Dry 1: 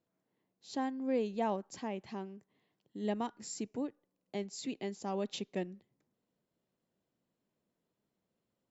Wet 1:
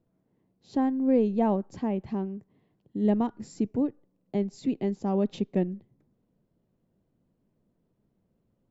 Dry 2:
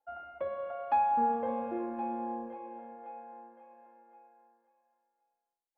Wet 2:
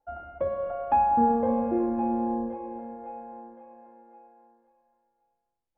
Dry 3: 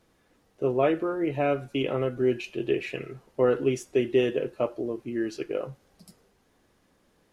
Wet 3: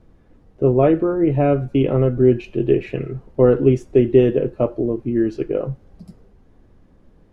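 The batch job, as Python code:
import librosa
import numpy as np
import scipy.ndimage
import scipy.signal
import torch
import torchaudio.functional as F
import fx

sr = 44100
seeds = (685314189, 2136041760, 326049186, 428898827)

y = fx.tilt_eq(x, sr, slope=-4.0)
y = F.gain(torch.from_numpy(y), 4.0).numpy()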